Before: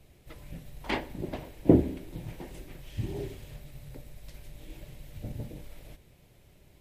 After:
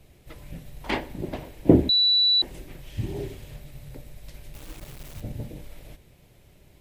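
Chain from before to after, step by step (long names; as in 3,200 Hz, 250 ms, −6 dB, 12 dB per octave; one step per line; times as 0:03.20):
0:01.89–0:02.42: beep over 3,950 Hz −20 dBFS
0:04.54–0:05.21: bit-depth reduction 8 bits, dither none
level +3.5 dB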